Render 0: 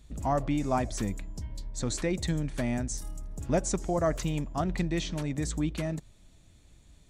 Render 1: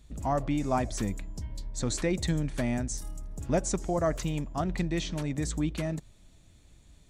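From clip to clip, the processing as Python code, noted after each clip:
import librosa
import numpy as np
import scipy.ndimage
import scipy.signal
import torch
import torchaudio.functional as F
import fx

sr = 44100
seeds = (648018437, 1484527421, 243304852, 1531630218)

y = fx.rider(x, sr, range_db=3, speed_s=2.0)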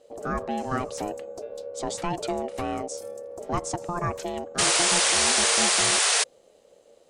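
y = x * np.sin(2.0 * np.pi * 520.0 * np.arange(len(x)) / sr)
y = fx.spec_paint(y, sr, seeds[0], shape='noise', start_s=4.58, length_s=1.66, low_hz=400.0, high_hz=10000.0, level_db=-24.0)
y = y * librosa.db_to_amplitude(2.0)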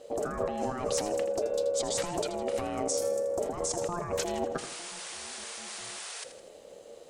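y = fx.over_compress(x, sr, threshold_db=-35.0, ratio=-1.0)
y = fx.echo_feedback(y, sr, ms=81, feedback_pct=49, wet_db=-11.5)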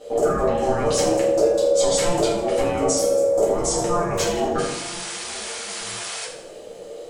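y = fx.room_shoebox(x, sr, seeds[1], volume_m3=98.0, walls='mixed', distance_m=1.9)
y = y * librosa.db_to_amplitude(2.5)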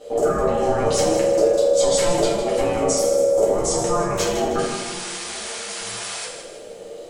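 y = fx.echo_feedback(x, sr, ms=157, feedback_pct=43, wet_db=-9.5)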